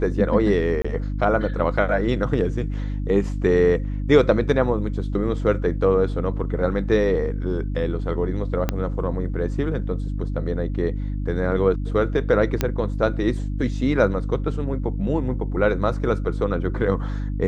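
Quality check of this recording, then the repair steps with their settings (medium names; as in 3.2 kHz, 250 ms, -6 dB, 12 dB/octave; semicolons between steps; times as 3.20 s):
hum 50 Hz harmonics 6 -26 dBFS
0.82–0.84 s: dropout 25 ms
8.69 s: pop -8 dBFS
12.61 s: pop -7 dBFS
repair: de-click; de-hum 50 Hz, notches 6; interpolate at 0.82 s, 25 ms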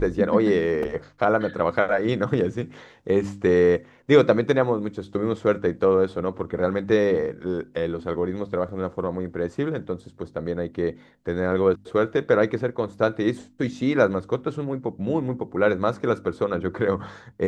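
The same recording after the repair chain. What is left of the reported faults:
8.69 s: pop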